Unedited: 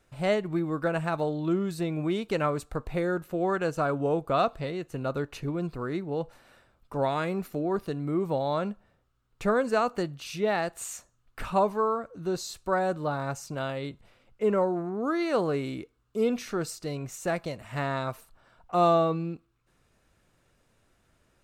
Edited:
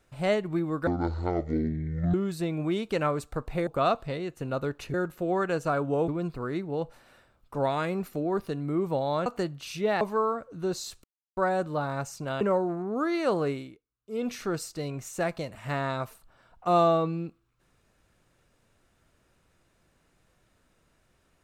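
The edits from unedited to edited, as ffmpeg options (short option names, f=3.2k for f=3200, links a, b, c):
-filter_complex "[0:a]asplit=12[a][b][c][d][e][f][g][h][i][j][k][l];[a]atrim=end=0.874[m];[b]atrim=start=0.87:end=1.53,asetpts=PTS-STARTPTS,asetrate=22932,aresample=44100,atrim=end_sample=55973,asetpts=PTS-STARTPTS[n];[c]atrim=start=1.526:end=3.062[o];[d]atrim=start=4.198:end=5.472[p];[e]atrim=start=3.058:end=4.202[q];[f]atrim=start=5.468:end=8.652[r];[g]atrim=start=9.848:end=10.602[s];[h]atrim=start=11.638:end=12.67,asetpts=PTS-STARTPTS,afade=t=out:st=1.028:d=0.004:c=hsin,apad=pad_dur=0.33[t];[i]atrim=start=12.67:end=13.712,asetpts=PTS-STARTPTS,afade=t=in:d=0.004:c=hsin[u];[j]atrim=start=14.478:end=15.93,asetpts=PTS-STARTPTS,afade=t=out:st=1.102:d=0.35:c=qua:silence=0.0944061[v];[k]atrim=start=15.93:end=16.02,asetpts=PTS-STARTPTS,volume=-20.5dB[w];[l]atrim=start=16.02,asetpts=PTS-STARTPTS,afade=t=in:d=0.35:c=qua:silence=0.0944061[x];[m][n]acrossfade=d=0.004:c1=hsin:c2=hsin[y];[y][o]acrossfade=d=0.004:c1=hsin:c2=hsin[z];[z][p]acrossfade=d=0.004:c1=hsin:c2=hsin[aa];[aa][q]acrossfade=d=0.004:c1=hsin:c2=hsin[ab];[ab][r]acrossfade=d=0.004:c1=hsin:c2=hsin[ac];[ac][s]acrossfade=d=0.004:c1=hsin:c2=hsin[ad];[t][u]concat=n=2:v=0:a=1[ae];[ad][ae]acrossfade=d=0.004:c1=hsin:c2=hsin[af];[v][w][x]concat=n=3:v=0:a=1[ag];[af][ag]acrossfade=d=0.004:c1=hsin:c2=hsin"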